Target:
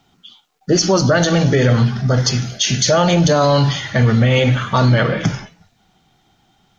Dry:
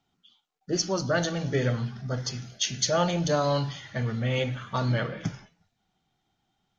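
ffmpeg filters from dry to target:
-af "alimiter=level_in=12.6:limit=0.891:release=50:level=0:latency=1,volume=0.596"

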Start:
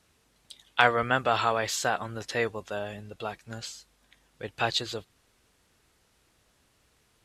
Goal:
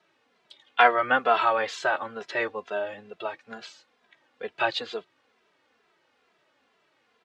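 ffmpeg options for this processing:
-filter_complex "[0:a]highpass=340,lowpass=2900,asplit=2[s0][s1];[s1]adelay=2.6,afreqshift=-2.2[s2];[s0][s2]amix=inputs=2:normalize=1,volume=2.11"

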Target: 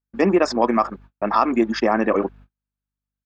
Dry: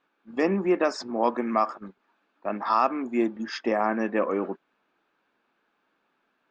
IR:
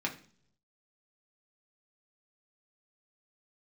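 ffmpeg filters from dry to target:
-filter_complex "[0:a]atempo=2,asplit=2[s0][s1];[s1]alimiter=limit=0.0944:level=0:latency=1:release=65,volume=0.944[s2];[s0][s2]amix=inputs=2:normalize=0,aeval=exprs='val(0)+0.00316*(sin(2*PI*50*n/s)+sin(2*PI*2*50*n/s)/2+sin(2*PI*3*50*n/s)/3+sin(2*PI*4*50*n/s)/4+sin(2*PI*5*50*n/s)/5)':c=same,agate=range=0.01:threshold=0.00562:ratio=16:detection=peak,volume=1.5"

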